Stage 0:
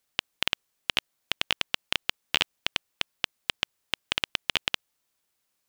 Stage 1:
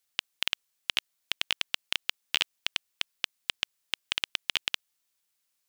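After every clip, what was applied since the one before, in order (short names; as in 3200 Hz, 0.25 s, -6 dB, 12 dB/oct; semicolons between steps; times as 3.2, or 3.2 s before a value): tilt shelf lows -5 dB, about 1400 Hz; gain -5 dB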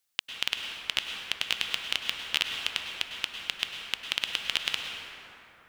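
plate-style reverb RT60 3.6 s, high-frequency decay 0.4×, pre-delay 90 ms, DRR 2 dB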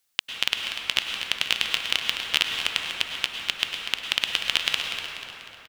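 feedback echo 0.244 s, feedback 49%, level -9.5 dB; gain +5 dB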